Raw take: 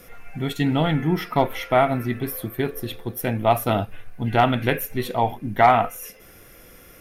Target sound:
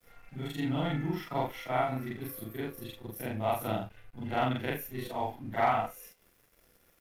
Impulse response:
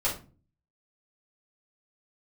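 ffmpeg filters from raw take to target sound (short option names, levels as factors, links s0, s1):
-af "afftfilt=real='re':imag='-im':win_size=4096:overlap=0.75,aeval=exprs='sgn(val(0))*max(abs(val(0))-0.00251,0)':c=same,volume=0.473"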